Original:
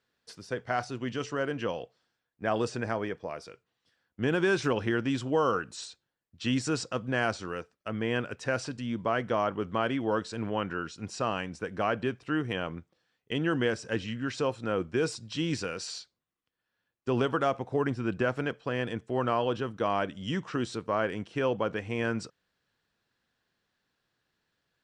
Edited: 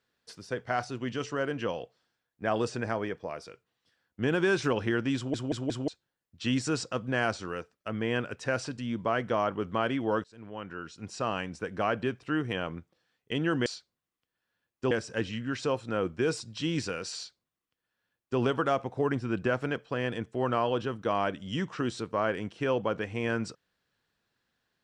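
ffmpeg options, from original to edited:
-filter_complex "[0:a]asplit=8[s0][s1][s2][s3][s4][s5][s6][s7];[s0]atrim=end=5.342[s8];[s1]atrim=start=5.158:end=5.342[s9];[s2]atrim=start=5.158:end=5.342[s10];[s3]atrim=start=5.158:end=5.342[s11];[s4]atrim=start=5.878:end=10.24,asetpts=PTS-STARTPTS,afade=t=out:st=4.358:d=0.004:c=hsin:silence=0.0749894[s12];[s5]atrim=start=10.24:end=13.662,asetpts=PTS-STARTPTS,afade=t=in:d=1.15:silence=0.0749894[s13];[s6]atrim=start=15.898:end=17.152[s14];[s7]atrim=start=13.658[s15];[s8][s9]acrossfade=d=0.004:c1=hsin:c2=hsin[s16];[s16][s10]acrossfade=d=0.004:c1=hsin:c2=hsin[s17];[s17][s11]acrossfade=d=0.004:c1=hsin:c2=hsin[s18];[s12][s13]concat=n=2:v=0:a=1[s19];[s18][s19]acrossfade=d=0.004:c1=hsin:c2=hsin[s20];[s20][s14]acrossfade=d=0.004:c1=hsin:c2=hsin[s21];[s21][s15]acrossfade=d=0.004:c1=hsin:c2=hsin"

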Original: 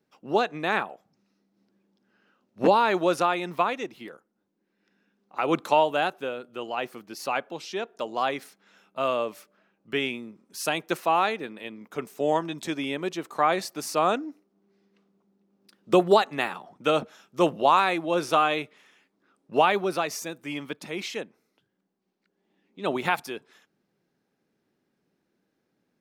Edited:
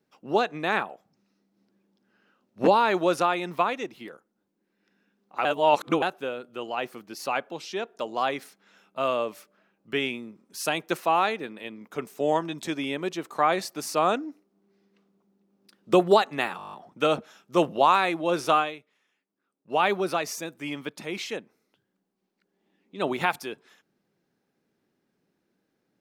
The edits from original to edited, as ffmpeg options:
-filter_complex "[0:a]asplit=13[s0][s1][s2][s3][s4][s5][s6][s7][s8][s9][s10][s11][s12];[s0]atrim=end=5.452[s13];[s1]atrim=start=5.448:end=6.022,asetpts=PTS-STARTPTS,areverse[s14];[s2]atrim=start=6.018:end=16.592[s15];[s3]atrim=start=16.568:end=16.592[s16];[s4]atrim=start=16.568:end=16.592[s17];[s5]atrim=start=16.568:end=16.592[s18];[s6]atrim=start=16.568:end=16.592[s19];[s7]atrim=start=16.568:end=16.592[s20];[s8]atrim=start=16.568:end=16.592[s21];[s9]atrim=start=16.568:end=16.592[s22];[s10]atrim=start=16.568:end=18.65,asetpts=PTS-STARTPTS,afade=t=out:st=1.852:d=0.23:c=qua:silence=0.199526[s23];[s11]atrim=start=18.65:end=19.45,asetpts=PTS-STARTPTS,volume=0.2[s24];[s12]atrim=start=19.45,asetpts=PTS-STARTPTS,afade=t=in:d=0.23:c=qua:silence=0.199526[s25];[s13][s14]acrossfade=d=0.004:c1=hsin:c2=hsin[s26];[s26][s15]acrossfade=d=0.004:c1=hsin:c2=hsin[s27];[s27][s16]acrossfade=d=0.004:c1=hsin:c2=hsin[s28];[s28][s17]acrossfade=d=0.004:c1=hsin:c2=hsin[s29];[s29][s18]acrossfade=d=0.004:c1=hsin:c2=hsin[s30];[s30][s19]acrossfade=d=0.004:c1=hsin:c2=hsin[s31];[s31][s20]acrossfade=d=0.004:c1=hsin:c2=hsin[s32];[s32][s21]acrossfade=d=0.004:c1=hsin:c2=hsin[s33];[s33][s22]acrossfade=d=0.004:c1=hsin:c2=hsin[s34];[s23][s24][s25]concat=n=3:v=0:a=1[s35];[s34][s35]acrossfade=d=0.004:c1=hsin:c2=hsin"

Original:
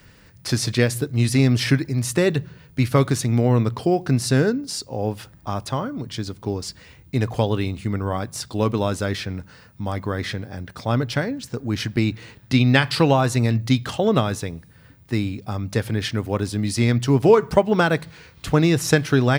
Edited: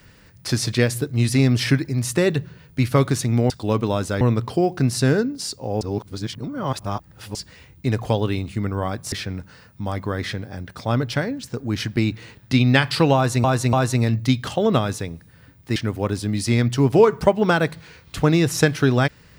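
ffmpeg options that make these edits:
-filter_complex "[0:a]asplit=9[s0][s1][s2][s3][s4][s5][s6][s7][s8];[s0]atrim=end=3.502[s9];[s1]atrim=start=8.408:end=9.122[s10];[s2]atrim=start=3.498:end=5.102[s11];[s3]atrim=start=5.098:end=6.642,asetpts=PTS-STARTPTS,areverse[s12];[s4]atrim=start=6.638:end=8.412[s13];[s5]atrim=start=9.118:end=13.442[s14];[s6]atrim=start=13.148:end=13.442[s15];[s7]atrim=start=13.148:end=15.182[s16];[s8]atrim=start=16.058[s17];[s9][s10]acrossfade=d=0.004:c1=hsin:c2=hsin[s18];[s18][s11]acrossfade=d=0.004:c1=hsin:c2=hsin[s19];[s19][s12]acrossfade=d=0.004:c1=hsin:c2=hsin[s20];[s20][s13]acrossfade=d=0.004:c1=hsin:c2=hsin[s21];[s21][s14]acrossfade=d=0.004:c1=hsin:c2=hsin[s22];[s22][s15]acrossfade=d=0.004:c1=hsin:c2=hsin[s23];[s23][s16]acrossfade=d=0.004:c1=hsin:c2=hsin[s24];[s24][s17]acrossfade=d=0.004:c1=hsin:c2=hsin"

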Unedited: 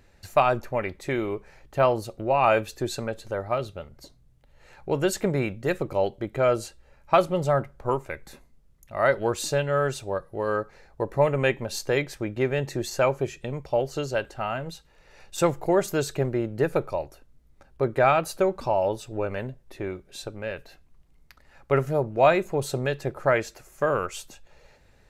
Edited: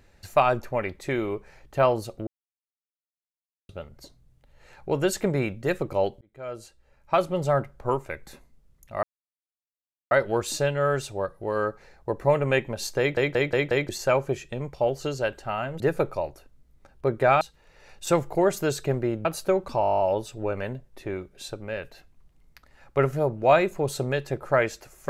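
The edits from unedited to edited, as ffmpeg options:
-filter_complex "[0:a]asplit=22[s0][s1][s2][s3][s4][s5][s6][s7][s8][s9][s10][s11][s12][s13][s14][s15][s16][s17][s18][s19][s20][s21];[s0]atrim=end=2.27,asetpts=PTS-STARTPTS,afade=t=out:st=2.266:d=0.004:c=hsin[s22];[s1]atrim=start=2.27:end=3.69,asetpts=PTS-STARTPTS,volume=0[s23];[s2]atrim=start=3.69:end=6.21,asetpts=PTS-STARTPTS,afade=t=in:d=0.004:c=hsin,afade=t=out:st=2.516:d=0.004:c=hsin[s24];[s3]atrim=start=6.21:end=9.03,asetpts=PTS-STARTPTS,afade=t=in:d=1.35,afade=t=out:st=2.816:d=0.004:c=hsin,apad=pad_dur=1.08[s25];[s4]atrim=start=9.03:end=12.092,asetpts=PTS-STARTPTS,afade=t=in:d=0.004:c=hsin[s26];[s5]atrim=start=11.908:end=12.092[s27];[s6]atrim=start=11.908:end=12.092[s28];[s7]atrim=start=11.908:end=12.092[s29];[s8]atrim=start=11.908:end=12.092[s30];[s9]atrim=start=12.808:end=14.722[s31];[s10]atrim=start=16.558:end=18.172[s32];[s11]atrim=start=14.718:end=16.562[s33];[s12]atrim=start=18.168:end=18.752[s34];[s13]atrim=start=18.728:end=18.752[s35];[s14]atrim=start=18.728:end=18.752[s36];[s15]atrim=start=18.728:end=18.752[s37];[s16]atrim=start=18.728:end=18.752[s38];[s17]atrim=start=18.728:end=18.752[s39];[s18]atrim=start=18.728:end=18.752[s40];[s19]atrim=start=18.728:end=18.752[s41];[s20]atrim=start=18.728:end=18.752[s42];[s21]atrim=start=18.728[s43];[s22][s23][s24][s25][s26]concat=n=5:v=0:a=1[s44];[s44][s27]acrossfade=d=0.004:c1=hsin:c2=hsin[s45];[s45][s28]acrossfade=d=0.004:c1=hsin:c2=hsin[s46];[s46][s29]acrossfade=d=0.004:c1=hsin:c2=hsin[s47];[s47][s30]acrossfade=d=0.004:c1=hsin:c2=hsin[s48];[s48][s31]acrossfade=d=0.004:c1=hsin:c2=hsin[s49];[s49][s32]acrossfade=d=0.004:c1=hsin:c2=hsin[s50];[s50][s33]acrossfade=d=0.004:c1=hsin:c2=hsin[s51];[s51][s34]acrossfade=d=0.004:c1=hsin:c2=hsin[s52];[s52][s35]acrossfade=d=0.004:c1=hsin:c2=hsin[s53];[s53][s36]acrossfade=d=0.004:c1=hsin:c2=hsin[s54];[s54][s37]acrossfade=d=0.004:c1=hsin:c2=hsin[s55];[s55][s38]acrossfade=d=0.004:c1=hsin:c2=hsin[s56];[s56][s39]acrossfade=d=0.004:c1=hsin:c2=hsin[s57];[s57][s40]acrossfade=d=0.004:c1=hsin:c2=hsin[s58];[s58][s41]acrossfade=d=0.004:c1=hsin:c2=hsin[s59];[s59][s42]acrossfade=d=0.004:c1=hsin:c2=hsin[s60];[s60][s43]acrossfade=d=0.004:c1=hsin:c2=hsin"

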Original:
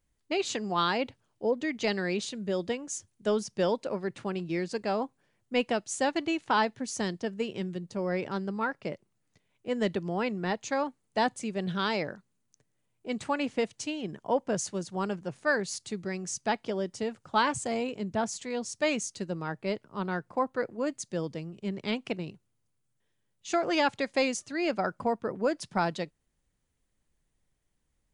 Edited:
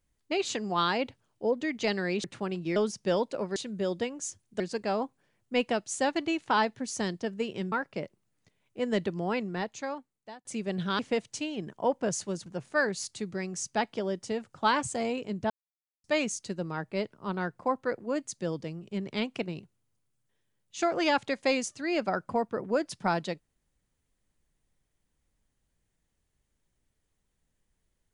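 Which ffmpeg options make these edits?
-filter_complex "[0:a]asplit=11[s0][s1][s2][s3][s4][s5][s6][s7][s8][s9][s10];[s0]atrim=end=2.242[s11];[s1]atrim=start=4.078:end=4.602[s12];[s2]atrim=start=3.278:end=4.082[s13];[s3]atrim=start=2.238:end=3.282[s14];[s4]atrim=start=4.598:end=7.722[s15];[s5]atrim=start=8.608:end=11.34,asetpts=PTS-STARTPTS,afade=t=out:st=1.602:d=1.13[s16];[s6]atrim=start=11.34:end=11.882,asetpts=PTS-STARTPTS,afade=t=in:d=0.004:c=hsin[s17];[s7]atrim=start=13.448:end=14.922[s18];[s8]atrim=start=15.168:end=18.21,asetpts=PTS-STARTPTS,afade=t=out:st=3.038:d=0.004:c=hsin[s19];[s9]atrim=start=18.21:end=18.75,asetpts=PTS-STARTPTS,volume=0[s20];[s10]atrim=start=18.75,asetpts=PTS-STARTPTS,afade=t=in:d=0.004:c=hsin[s21];[s11][s12]acrossfade=d=0.004:c1=hsin:c2=hsin[s22];[s22][s13]acrossfade=d=0.004:c1=hsin:c2=hsin[s23];[s23][s14]acrossfade=d=0.004:c1=hsin:c2=hsin[s24];[s24][s15]acrossfade=d=0.004:c1=hsin:c2=hsin[s25];[s16][s17]concat=n=2:v=0:a=1[s26];[s25][s26]acrossfade=d=0.004:c1=hsin:c2=hsin[s27];[s27][s18]acrossfade=d=0.004:c1=hsin:c2=hsin[s28];[s19][s20][s21]concat=n=3:v=0:a=1[s29];[s28][s29]acrossfade=d=0.004:c1=hsin:c2=hsin"

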